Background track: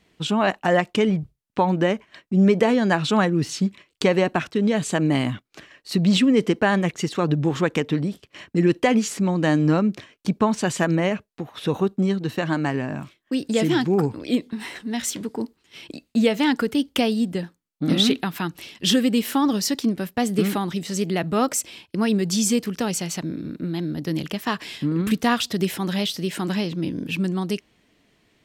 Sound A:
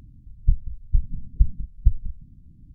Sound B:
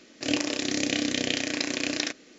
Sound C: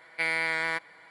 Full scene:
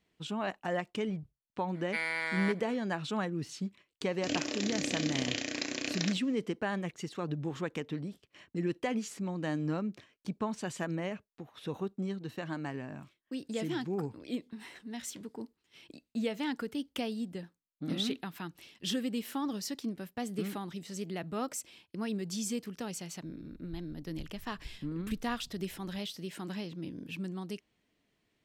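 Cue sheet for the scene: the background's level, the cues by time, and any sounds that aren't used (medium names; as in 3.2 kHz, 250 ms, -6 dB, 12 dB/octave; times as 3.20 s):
background track -14.5 dB
1.74 s: add C -6 dB
4.01 s: add B -7 dB
23.25 s: add A -11.5 dB + compression 2:1, threshold -42 dBFS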